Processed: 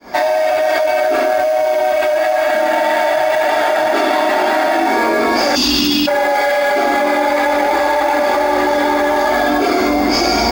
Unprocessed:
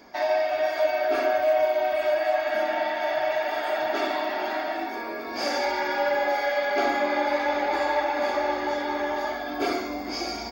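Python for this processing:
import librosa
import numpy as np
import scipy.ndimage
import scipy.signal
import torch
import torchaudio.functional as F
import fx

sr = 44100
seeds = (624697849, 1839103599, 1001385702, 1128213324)

p1 = fx.fade_in_head(x, sr, length_s=2.83)
p2 = fx.steep_lowpass(p1, sr, hz=9500.0, slope=36, at=(3.47, 5.38))
p3 = fx.spec_erase(p2, sr, start_s=5.56, length_s=0.52, low_hz=350.0, high_hz=2500.0)
p4 = fx.sample_hold(p3, sr, seeds[0], rate_hz=5600.0, jitter_pct=20)
p5 = p3 + F.gain(torch.from_numpy(p4), -10.5).numpy()
p6 = fx.env_flatten(p5, sr, amount_pct=100)
y = F.gain(torch.from_numpy(p6), 5.0).numpy()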